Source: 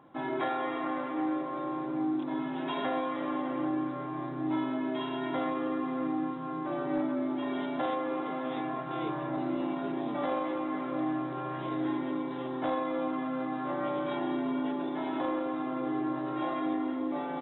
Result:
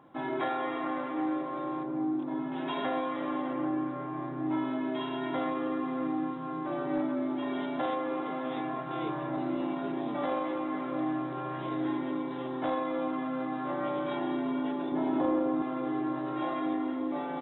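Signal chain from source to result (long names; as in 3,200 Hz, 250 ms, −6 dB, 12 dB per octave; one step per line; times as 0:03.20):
0:01.83–0:02.52: high-shelf EQ 2,000 Hz −11 dB
0:03.53–0:04.65: low-pass filter 2,900 Hz 12 dB per octave
0:14.92–0:15.62: tilt shelving filter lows +6.5 dB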